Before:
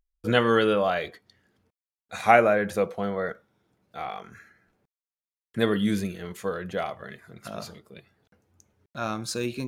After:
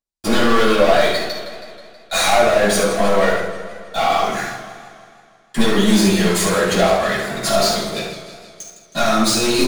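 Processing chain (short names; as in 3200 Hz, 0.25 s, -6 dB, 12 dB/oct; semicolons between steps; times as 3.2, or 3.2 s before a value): HPF 410 Hz 6 dB/oct; band shelf 6100 Hz +8.5 dB; compressor, threshold -33 dBFS, peak gain reduction 18.5 dB; sample leveller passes 5; echo 72 ms -8 dB; shoebox room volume 480 m³, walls furnished, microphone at 8.5 m; warbling echo 0.16 s, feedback 62%, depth 112 cents, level -12.5 dB; gain -4.5 dB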